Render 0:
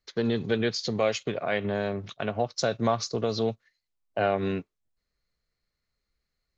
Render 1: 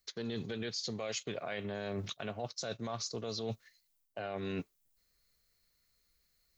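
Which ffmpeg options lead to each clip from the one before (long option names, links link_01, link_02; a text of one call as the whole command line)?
ffmpeg -i in.wav -af "aemphasis=mode=production:type=75kf,alimiter=limit=-18dB:level=0:latency=1:release=31,areverse,acompressor=threshold=-36dB:ratio=10,areverse,volume=1dB" out.wav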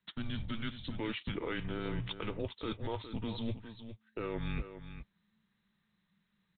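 ffmpeg -i in.wav -filter_complex "[0:a]afreqshift=-220,asplit=2[link_01][link_02];[link_02]aecho=0:1:409:0.282[link_03];[link_01][link_03]amix=inputs=2:normalize=0,aresample=8000,aresample=44100,volume=2dB" out.wav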